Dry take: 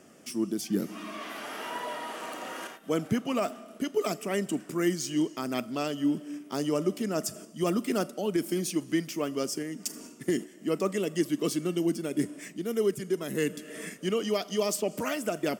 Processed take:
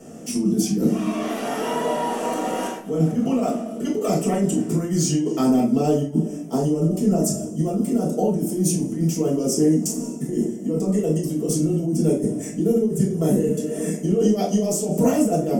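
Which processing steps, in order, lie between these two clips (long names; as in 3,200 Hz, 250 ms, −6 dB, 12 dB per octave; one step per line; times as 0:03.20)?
flat-topped bell 2,300 Hz −9.5 dB 2.3 octaves, from 0:05.43 −16 dB
compressor whose output falls as the input rises −33 dBFS, ratio −1
convolution reverb, pre-delay 4 ms, DRR −6.5 dB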